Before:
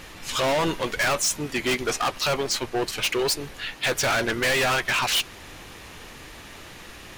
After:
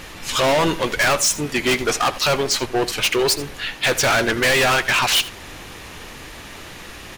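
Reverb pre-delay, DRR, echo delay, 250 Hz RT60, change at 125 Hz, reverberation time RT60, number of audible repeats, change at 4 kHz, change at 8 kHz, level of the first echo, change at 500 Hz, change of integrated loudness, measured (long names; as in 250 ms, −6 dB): no reverb audible, no reverb audible, 81 ms, no reverb audible, +5.5 dB, no reverb audible, 1, +5.5 dB, +5.5 dB, −17.0 dB, +5.5 dB, +5.5 dB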